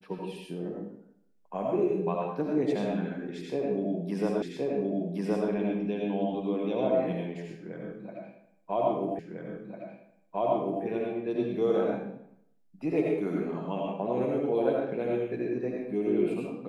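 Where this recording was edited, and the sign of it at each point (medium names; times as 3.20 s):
4.42 s: repeat of the last 1.07 s
9.19 s: repeat of the last 1.65 s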